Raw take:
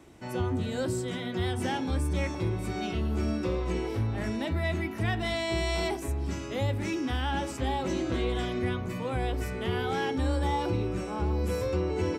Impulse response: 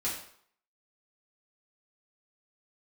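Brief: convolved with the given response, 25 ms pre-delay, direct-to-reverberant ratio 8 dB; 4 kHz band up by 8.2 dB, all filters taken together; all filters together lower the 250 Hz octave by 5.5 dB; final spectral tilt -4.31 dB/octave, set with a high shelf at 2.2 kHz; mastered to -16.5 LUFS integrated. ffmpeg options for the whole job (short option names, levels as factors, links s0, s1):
-filter_complex "[0:a]equalizer=f=250:t=o:g=-8,highshelf=f=2200:g=5.5,equalizer=f=4000:t=o:g=5.5,asplit=2[s0][s1];[1:a]atrim=start_sample=2205,adelay=25[s2];[s1][s2]afir=irnorm=-1:irlink=0,volume=0.224[s3];[s0][s3]amix=inputs=2:normalize=0,volume=4.22"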